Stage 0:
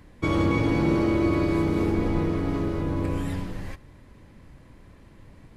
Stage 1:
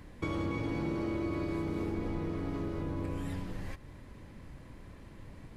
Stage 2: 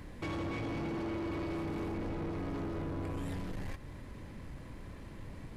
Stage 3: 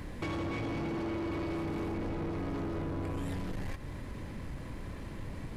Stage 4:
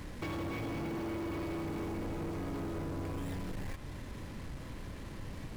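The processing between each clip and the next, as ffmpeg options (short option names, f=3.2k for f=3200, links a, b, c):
-af "acompressor=threshold=-37dB:ratio=2.5"
-af "asoftclip=type=tanh:threshold=-37.5dB,volume=3.5dB"
-af "acompressor=threshold=-39dB:ratio=6,volume=5.5dB"
-af "acrusher=bits=7:mix=0:aa=0.5,volume=-2.5dB"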